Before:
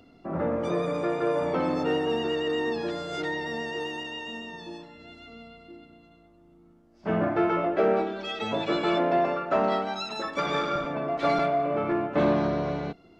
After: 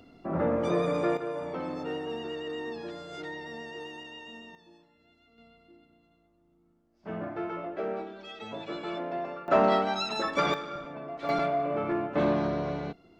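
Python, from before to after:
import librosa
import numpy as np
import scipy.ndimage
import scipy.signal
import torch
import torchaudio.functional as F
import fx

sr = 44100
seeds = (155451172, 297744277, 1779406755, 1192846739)

y = fx.gain(x, sr, db=fx.steps((0.0, 0.5), (1.17, -8.5), (4.55, -17.0), (5.38, -10.5), (9.48, 2.0), (10.54, -10.0), (11.29, -3.0)))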